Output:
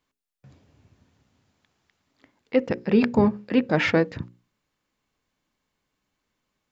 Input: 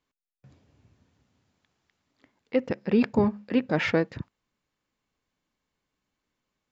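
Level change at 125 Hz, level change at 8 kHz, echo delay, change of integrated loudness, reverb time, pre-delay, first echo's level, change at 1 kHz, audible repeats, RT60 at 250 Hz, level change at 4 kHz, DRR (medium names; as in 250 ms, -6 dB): +3.5 dB, no reading, no echo, +3.5 dB, no reverb, no reverb, no echo, +4.0 dB, no echo, no reverb, +4.0 dB, no reverb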